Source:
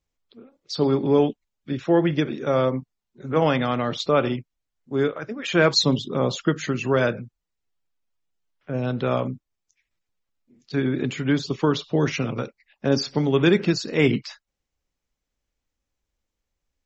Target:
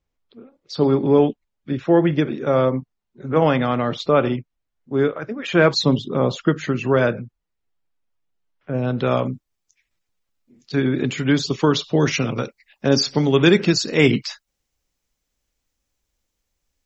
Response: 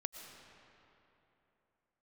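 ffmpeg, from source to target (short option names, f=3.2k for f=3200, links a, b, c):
-af "asetnsamples=n=441:p=0,asendcmd='8.98 highshelf g 2.5;11.18 highshelf g 7.5',highshelf=f=4.1k:g=-10.5,volume=3.5dB"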